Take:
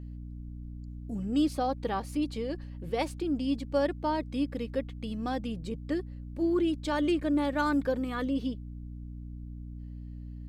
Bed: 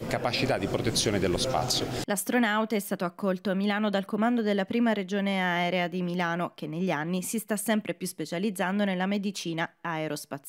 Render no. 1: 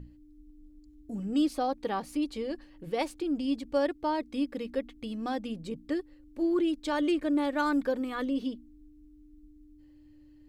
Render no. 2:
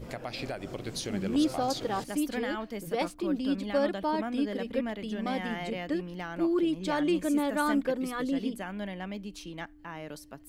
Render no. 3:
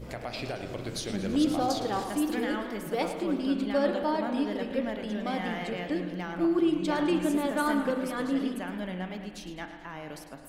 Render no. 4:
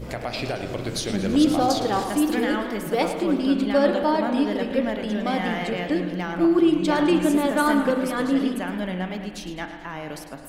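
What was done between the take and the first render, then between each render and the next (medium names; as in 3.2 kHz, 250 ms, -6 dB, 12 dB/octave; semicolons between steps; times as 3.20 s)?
hum notches 60/120/180/240 Hz
add bed -10 dB
spring tank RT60 1.6 s, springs 33 ms, chirp 30 ms, DRR 7 dB; modulated delay 108 ms, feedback 60%, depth 204 cents, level -12 dB
trim +7 dB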